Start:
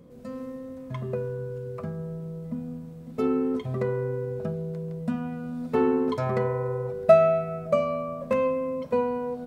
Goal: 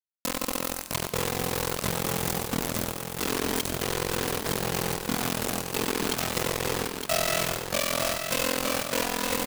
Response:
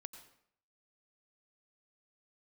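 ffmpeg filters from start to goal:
-filter_complex "[0:a]areverse,acompressor=threshold=-34dB:ratio=12,areverse,aexciter=amount=2.5:drive=7.4:freq=2200,tremolo=f=43:d=0.75,acrusher=bits=5:mix=0:aa=0.000001,aecho=1:1:914|1828|2742:0.501|0.12|0.0289,asplit=2[link_01][link_02];[1:a]atrim=start_sample=2205,highshelf=frequency=2400:gain=11.5[link_03];[link_02][link_03]afir=irnorm=-1:irlink=0,volume=4.5dB[link_04];[link_01][link_04]amix=inputs=2:normalize=0,volume=3.5dB"

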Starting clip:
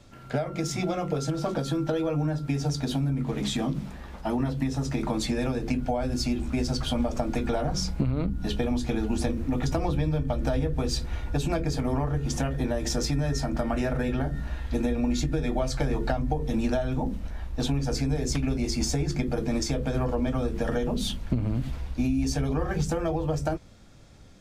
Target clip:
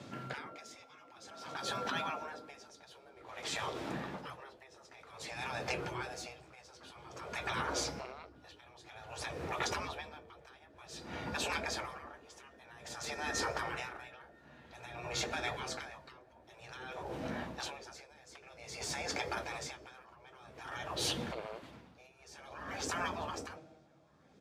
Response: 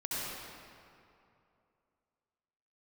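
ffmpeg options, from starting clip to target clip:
-filter_complex "[0:a]highpass=frequency=130:width=0.5412,highpass=frequency=130:width=1.3066,asplit=2[link_01][link_02];[1:a]atrim=start_sample=2205[link_03];[link_02][link_03]afir=irnorm=-1:irlink=0,volume=-24.5dB[link_04];[link_01][link_04]amix=inputs=2:normalize=0,afftfilt=real='re*lt(hypot(re,im),0.0631)':imag='im*lt(hypot(re,im),0.0631)':win_size=1024:overlap=0.75,lowpass=frequency=3700:poles=1,asplit=2[link_05][link_06];[link_06]adelay=1516,volume=-11dB,highshelf=frequency=4000:gain=-34.1[link_07];[link_05][link_07]amix=inputs=2:normalize=0,aeval=exprs='val(0)*pow(10,-22*(0.5-0.5*cos(2*PI*0.52*n/s))/20)':channel_layout=same,volume=6.5dB"

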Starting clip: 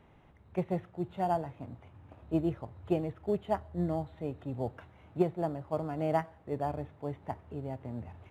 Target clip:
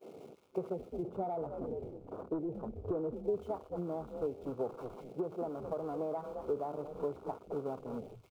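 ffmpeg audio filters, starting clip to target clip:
ffmpeg -i in.wav -filter_complex "[0:a]aeval=exprs='val(0)+0.5*0.02*sgn(val(0))':channel_layout=same,highpass=250,agate=range=-33dB:threshold=-32dB:ratio=3:detection=peak,asplit=3[link_01][link_02][link_03];[link_01]afade=type=out:start_time=1.02:duration=0.02[link_04];[link_02]tiltshelf=frequency=1300:gain=7,afade=type=in:start_time=1.02:duration=0.02,afade=type=out:start_time=3.13:duration=0.02[link_05];[link_03]afade=type=in:start_time=3.13:duration=0.02[link_06];[link_04][link_05][link_06]amix=inputs=3:normalize=0,asplit=4[link_07][link_08][link_09][link_10];[link_08]adelay=211,afreqshift=-120,volume=-16.5dB[link_11];[link_09]adelay=422,afreqshift=-240,volume=-25.4dB[link_12];[link_10]adelay=633,afreqshift=-360,volume=-34.2dB[link_13];[link_07][link_11][link_12][link_13]amix=inputs=4:normalize=0,asoftclip=type=tanh:threshold=-21dB,acompressor=threshold=-42dB:ratio=8,afwtdn=0.00355,superequalizer=7b=2:11b=0.282,volume=6dB" out.wav

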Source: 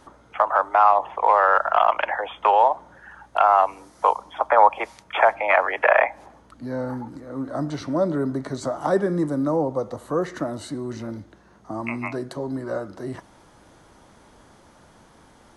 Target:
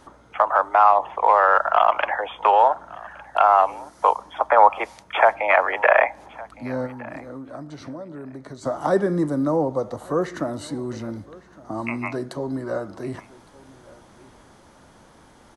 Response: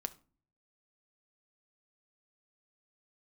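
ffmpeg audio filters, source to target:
-filter_complex "[0:a]asettb=1/sr,asplit=3[link_01][link_02][link_03];[link_01]atrim=end=6.864[link_04];[link_02]atrim=start=6.86:end=8.66,asetpts=PTS-STARTPTS,afade=type=in:duration=0.004:curve=qsin,afade=type=out:start_time=1.796:duration=0.004:curve=qsin,acompressor=threshold=-34dB:ratio=12[link_05];[link_03]atrim=start=8.656[link_06];[link_04][link_05]acrossfade=duration=0.004:curve1=hsin:curve2=qsin[link_07];[link_07][link_06]acrossfade=duration=0.004:curve1=qsin:curve2=hsin,aecho=1:1:1162|2324:0.0794|0.0119,volume=1dB"

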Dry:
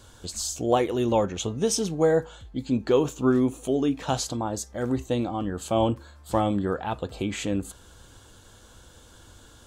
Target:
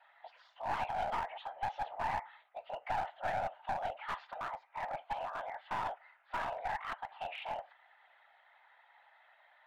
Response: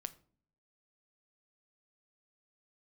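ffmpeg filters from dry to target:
-filter_complex "[0:a]asplit=2[link_01][link_02];[1:a]atrim=start_sample=2205,asetrate=83790,aresample=44100[link_03];[link_02][link_03]afir=irnorm=-1:irlink=0,volume=-6.5dB[link_04];[link_01][link_04]amix=inputs=2:normalize=0,highpass=frequency=360:width_type=q:width=0.5412,highpass=frequency=360:width_type=q:width=1.307,lowpass=frequency=2500:width_type=q:width=0.5176,lowpass=frequency=2500:width_type=q:width=0.7071,lowpass=frequency=2500:width_type=q:width=1.932,afreqshift=380,afftfilt=real='hypot(re,im)*cos(2*PI*random(0))':imag='hypot(re,im)*sin(2*PI*random(1))':win_size=512:overlap=0.75,alimiter=limit=-22.5dB:level=0:latency=1:release=75,equalizer=frequency=1200:width_type=o:width=0.93:gain=-3.5,aeval=exprs='clip(val(0),-1,0.0168)':channel_layout=same,bandreject=frequency=1100:width=12"

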